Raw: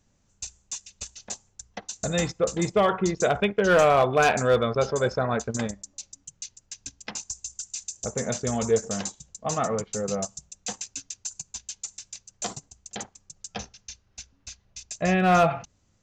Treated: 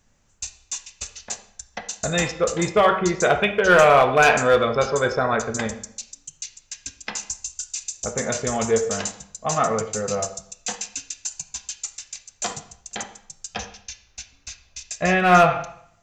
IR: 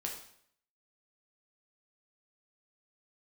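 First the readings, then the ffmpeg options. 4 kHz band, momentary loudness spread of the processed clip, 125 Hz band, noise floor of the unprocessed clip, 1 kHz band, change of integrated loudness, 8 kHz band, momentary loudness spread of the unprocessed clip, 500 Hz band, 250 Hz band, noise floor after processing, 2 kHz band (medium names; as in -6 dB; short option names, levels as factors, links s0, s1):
+5.0 dB, 21 LU, +1.0 dB, -67 dBFS, +5.5 dB, +4.5 dB, +4.5 dB, 21 LU, +3.5 dB, +1.5 dB, -59 dBFS, +7.5 dB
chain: -filter_complex "[0:a]tiltshelf=f=840:g=-5.5,asplit=2[s0][s1];[1:a]atrim=start_sample=2205,lowpass=2800,lowshelf=f=83:g=10[s2];[s1][s2]afir=irnorm=-1:irlink=0,volume=1.06[s3];[s0][s3]amix=inputs=2:normalize=0"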